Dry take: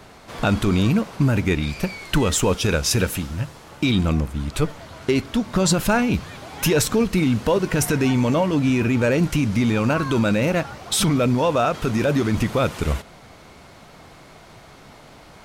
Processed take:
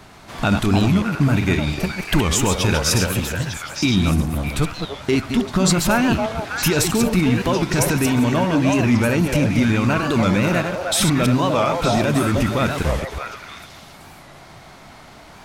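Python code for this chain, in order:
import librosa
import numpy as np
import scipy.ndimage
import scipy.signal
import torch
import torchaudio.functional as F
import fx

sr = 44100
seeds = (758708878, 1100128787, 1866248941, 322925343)

p1 = fx.reverse_delay(x, sr, ms=128, wet_db=-6.0)
p2 = fx.peak_eq(p1, sr, hz=490.0, db=-7.0, octaves=0.48)
p3 = p2 + fx.echo_stepped(p2, sr, ms=305, hz=650.0, octaves=1.4, feedback_pct=70, wet_db=-1.0, dry=0)
p4 = fx.record_warp(p3, sr, rpm=45.0, depth_cents=160.0)
y = F.gain(torch.from_numpy(p4), 1.5).numpy()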